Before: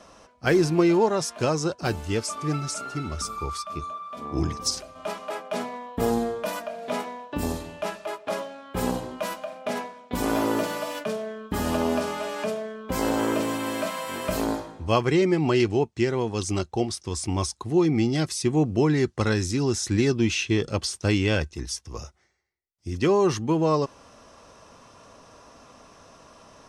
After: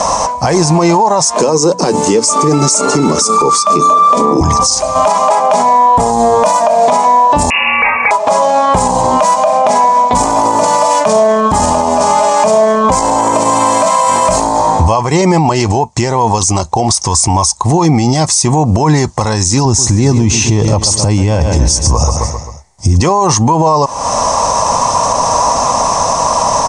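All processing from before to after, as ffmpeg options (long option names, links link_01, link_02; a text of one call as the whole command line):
ffmpeg -i in.wav -filter_complex "[0:a]asettb=1/sr,asplit=3[link_01][link_02][link_03];[link_01]atrim=end=1.344[link_04];[link_02]atrim=start=1.34:end=4.41,asetpts=PTS-STARTPTS,afade=type=in:duration=0.004:curve=qsin,afade=type=out:start_time=3.066:duration=0.004:curve=qsin,highpass=frequency=190:width=0.5412,highpass=frequency=190:width=1.3066,lowshelf=frequency=550:width_type=q:width=3:gain=6.5,bandreject=frequency=60:width_type=h:width=6,bandreject=frequency=120:width_type=h:width=6,bandreject=frequency=180:width_type=h:width=6,bandreject=frequency=240:width_type=h:width=6,bandreject=frequency=300:width_type=h:width=6[link_05];[link_03]atrim=start=4.406[link_06];[link_04][link_05]acrossfade=duration=0.004:curve1=hsin:curve2=qsin[link_07];[link_07][link_06]acrossfade=duration=0.004:curve1=qsin:curve2=hsin,asettb=1/sr,asplit=3[link_08][link_09][link_10];[link_08]atrim=end=7.504[link_11];[link_09]atrim=start=7.5:end=8.11,asetpts=PTS-STARTPTS,afade=type=in:duration=0.004:curve=qsin,afade=type=out:start_time=0.606:duration=0.004:curve=qsin,lowpass=frequency=2500:width_type=q:width=0.5098,lowpass=frequency=2500:width_type=q:width=0.6013,lowpass=frequency=2500:width_type=q:width=0.9,lowpass=frequency=2500:width_type=q:width=2.563,afreqshift=-2900,acompressor=mode=upward:threshold=-37dB:ratio=2.5:attack=3.2:release=140:knee=2.83:detection=peak[link_12];[link_10]atrim=start=8.106[link_13];[link_11][link_12]acrossfade=duration=0.004:curve1=hsin:curve2=qsin[link_14];[link_14][link_13]acrossfade=duration=0.004:curve1=qsin:curve2=hsin,asettb=1/sr,asplit=3[link_15][link_16][link_17];[link_15]atrim=end=19.654[link_18];[link_16]atrim=start=19.65:end=23.01,asetpts=PTS-STARTPTS,afade=type=in:duration=0.004:curve=qsin,afade=type=out:start_time=3.356:duration=0.004:curve=qsin,lowshelf=frequency=480:gain=11,aecho=1:1:132|264|396|528:0.188|0.0848|0.0381|0.0172,atrim=end_sample=148176[link_19];[link_17]atrim=start=23.006[link_20];[link_18][link_19]acrossfade=duration=0.004:curve1=hsin:curve2=qsin[link_21];[link_21][link_20]acrossfade=duration=0.004:curve1=qsin:curve2=hsin,firequalizer=gain_entry='entry(160,0);entry(370,-7);entry(530,3);entry(950,14);entry(1400,-6);entry(2000,-2);entry(2900,-6);entry(6500,11);entry(9300,7);entry(13000,-30)':delay=0.05:min_phase=1,acompressor=threshold=-33dB:ratio=6,alimiter=level_in=33.5dB:limit=-1dB:release=50:level=0:latency=1,volume=-1dB" out.wav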